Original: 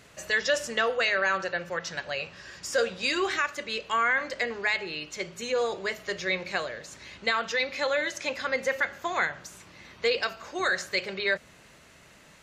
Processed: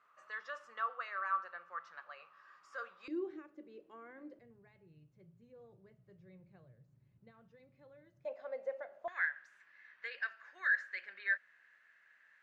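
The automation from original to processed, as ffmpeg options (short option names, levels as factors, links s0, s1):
-af "asetnsamples=n=441:p=0,asendcmd='3.08 bandpass f 320;4.39 bandpass f 130;8.25 bandpass f 630;9.08 bandpass f 1700',bandpass=f=1200:t=q:w=10:csg=0"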